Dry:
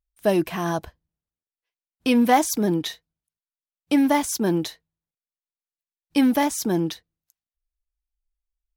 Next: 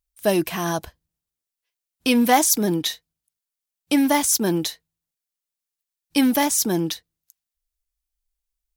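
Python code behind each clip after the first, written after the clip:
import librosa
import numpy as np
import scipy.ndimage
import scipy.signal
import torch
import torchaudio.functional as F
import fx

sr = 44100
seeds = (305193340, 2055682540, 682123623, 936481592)

y = fx.high_shelf(x, sr, hz=3300.0, db=10.0)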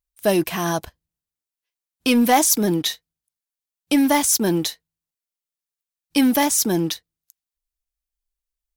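y = fx.leveller(x, sr, passes=1)
y = y * 10.0 ** (-2.0 / 20.0)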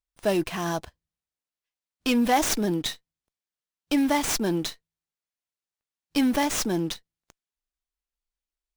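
y = fx.running_max(x, sr, window=3)
y = y * 10.0 ** (-5.5 / 20.0)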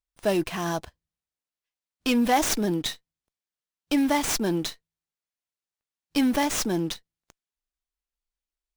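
y = x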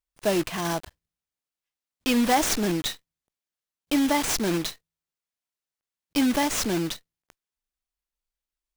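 y = fx.block_float(x, sr, bits=3)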